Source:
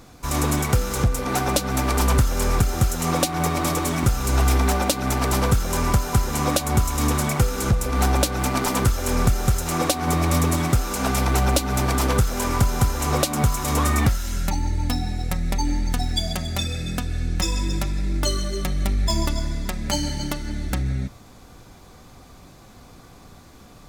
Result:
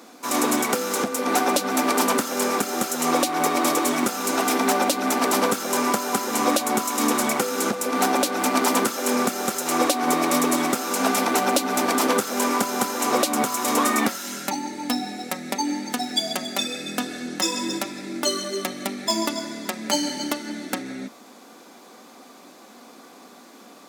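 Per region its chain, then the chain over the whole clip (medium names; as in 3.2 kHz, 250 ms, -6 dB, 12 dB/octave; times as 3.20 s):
17.00–17.78 s: band-stop 2.4 kHz, Q 11 + level flattener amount 70%
whole clip: Chebyshev high-pass 230 Hz, order 4; loudness maximiser +9 dB; trim -5.5 dB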